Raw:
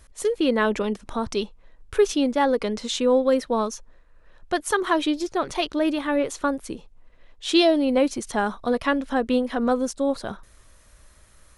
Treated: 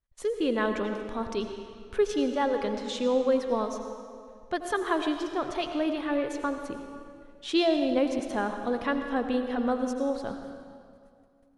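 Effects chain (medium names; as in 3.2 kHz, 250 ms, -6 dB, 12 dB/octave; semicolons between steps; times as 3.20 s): gate -47 dBFS, range -29 dB; treble shelf 6.5 kHz -10.5 dB; on a send: reverberation RT60 2.3 s, pre-delay 76 ms, DRR 6 dB; on the sum: trim -6 dB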